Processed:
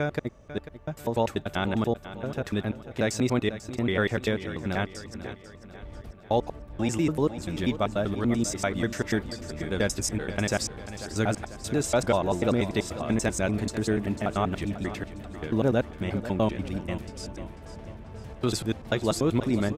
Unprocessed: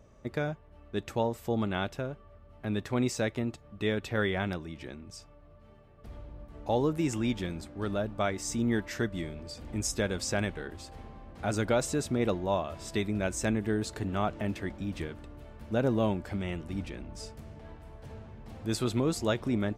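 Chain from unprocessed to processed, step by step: slices played last to first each 97 ms, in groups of 5; feedback delay 493 ms, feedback 49%, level -13.5 dB; trim +4 dB

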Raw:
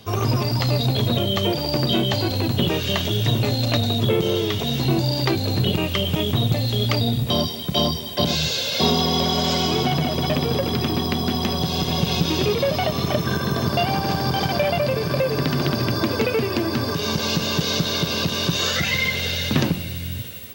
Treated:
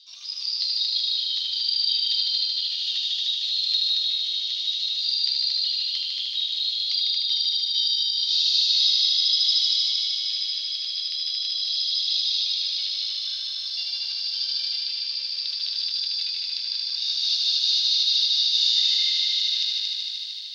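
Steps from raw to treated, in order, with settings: Butterworth band-pass 4.3 kHz, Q 3; on a send: multi-head delay 76 ms, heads all three, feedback 75%, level -7 dB; on the sum: trim +3.5 dB

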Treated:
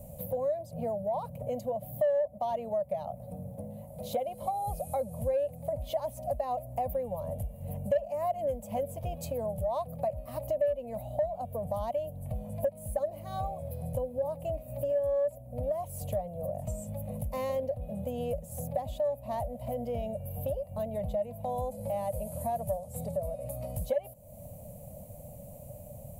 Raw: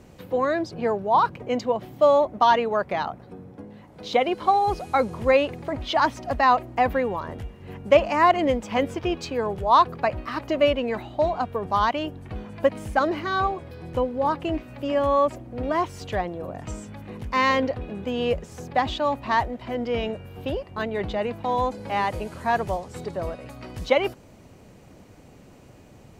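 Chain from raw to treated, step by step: FFT filter 160 Hz 0 dB, 230 Hz -7 dB, 370 Hz -29 dB, 580 Hz +8 dB, 860 Hz -11 dB, 1.5 kHz -29 dB, 2.3 kHz -19 dB, 5.5 kHz -16 dB, 11 kHz +14 dB; in parallel at -3 dB: saturation -10 dBFS, distortion -12 dB; on the sum: compression 3:1, threshold -33 dBFS, peak gain reduction 22 dB

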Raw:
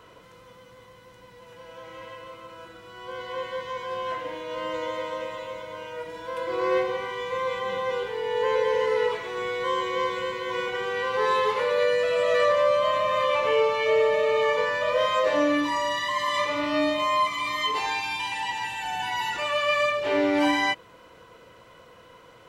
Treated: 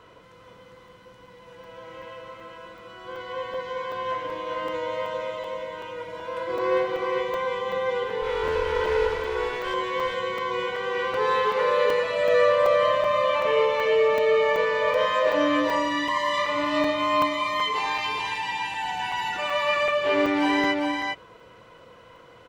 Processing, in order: 8.22–9.74 s: comb filter that takes the minimum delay 2.6 ms; treble shelf 6.6 kHz -9 dB; delay 403 ms -4 dB; crackling interface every 0.38 s, samples 128, zero, from 0.88 s

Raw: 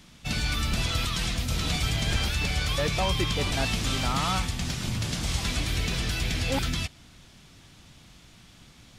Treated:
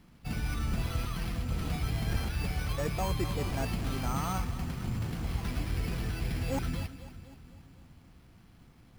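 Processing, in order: low-pass 1.2 kHz 6 dB/octave; band-stop 600 Hz, Q 15; on a send: two-band feedback delay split 300 Hz, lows 379 ms, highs 250 ms, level -14 dB; on the sum: careless resampling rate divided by 6×, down filtered, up hold; trim -3.5 dB

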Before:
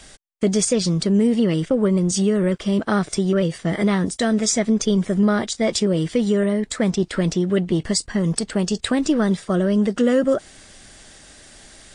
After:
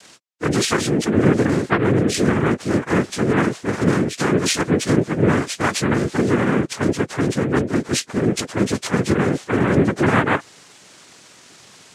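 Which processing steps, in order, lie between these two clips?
frequency axis rescaled in octaves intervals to 86%; noise-vocoded speech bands 3; trim +2 dB

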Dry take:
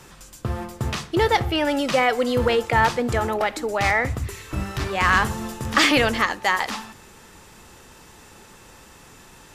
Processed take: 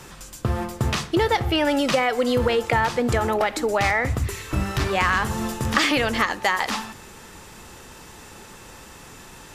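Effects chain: compression 5:1, threshold -21 dBFS, peak gain reduction 8 dB; trim +4 dB

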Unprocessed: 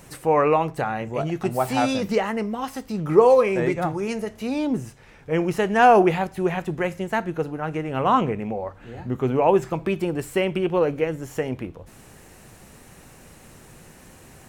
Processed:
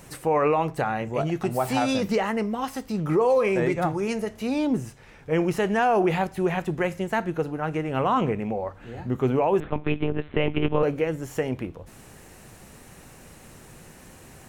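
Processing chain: peak limiter -13.5 dBFS, peak gain reduction 9.5 dB; 9.60–10.83 s: monotone LPC vocoder at 8 kHz 150 Hz

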